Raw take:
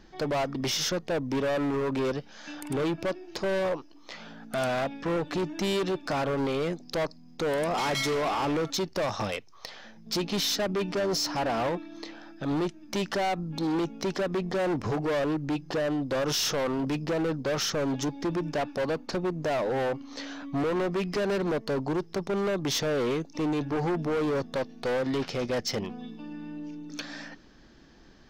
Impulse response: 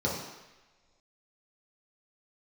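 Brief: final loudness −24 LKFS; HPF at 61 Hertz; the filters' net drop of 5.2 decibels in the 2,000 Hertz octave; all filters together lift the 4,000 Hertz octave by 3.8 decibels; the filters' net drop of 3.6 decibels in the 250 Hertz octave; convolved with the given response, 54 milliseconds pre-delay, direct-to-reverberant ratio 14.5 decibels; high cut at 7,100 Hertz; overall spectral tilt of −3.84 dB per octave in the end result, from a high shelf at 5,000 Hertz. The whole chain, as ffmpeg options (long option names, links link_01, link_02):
-filter_complex "[0:a]highpass=61,lowpass=7100,equalizer=frequency=250:width_type=o:gain=-5,equalizer=frequency=2000:width_type=o:gain=-9,equalizer=frequency=4000:width_type=o:gain=5,highshelf=frequency=5000:gain=5.5,asplit=2[link_01][link_02];[1:a]atrim=start_sample=2205,adelay=54[link_03];[link_02][link_03]afir=irnorm=-1:irlink=0,volume=-24dB[link_04];[link_01][link_04]amix=inputs=2:normalize=0,volume=6dB"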